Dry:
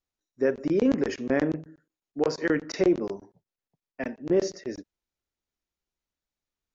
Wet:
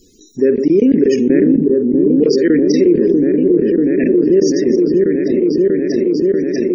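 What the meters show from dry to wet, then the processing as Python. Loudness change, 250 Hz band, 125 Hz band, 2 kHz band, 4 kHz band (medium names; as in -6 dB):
+14.0 dB, +17.5 dB, +14.0 dB, +5.5 dB, +11.5 dB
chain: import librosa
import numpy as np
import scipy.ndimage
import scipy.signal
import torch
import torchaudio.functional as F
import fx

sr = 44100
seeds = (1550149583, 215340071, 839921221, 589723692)

y = fx.curve_eq(x, sr, hz=(120.0, 180.0, 250.0, 420.0, 820.0, 1900.0, 8200.0), db=(0, 7, 10, 11, -20, 1, 8))
y = fx.echo_opening(y, sr, ms=640, hz=400, octaves=1, feedback_pct=70, wet_db=-3)
y = fx.spec_topn(y, sr, count=64)
y = fx.env_flatten(y, sr, amount_pct=70)
y = y * librosa.db_to_amplitude(-1.5)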